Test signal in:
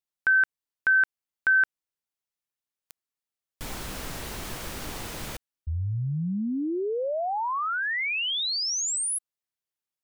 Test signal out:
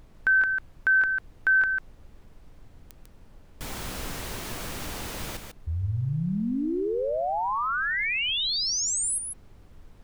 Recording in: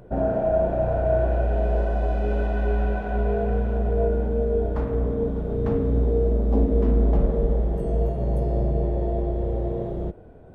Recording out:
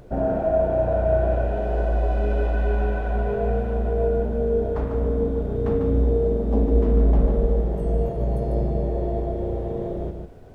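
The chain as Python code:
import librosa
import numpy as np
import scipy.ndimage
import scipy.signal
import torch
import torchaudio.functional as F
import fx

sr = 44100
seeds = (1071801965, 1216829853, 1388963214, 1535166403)

y = fx.dmg_noise_colour(x, sr, seeds[0], colour='brown', level_db=-49.0)
y = y + 10.0 ** (-6.5 / 20.0) * np.pad(y, (int(147 * sr / 1000.0), 0))[:len(y)]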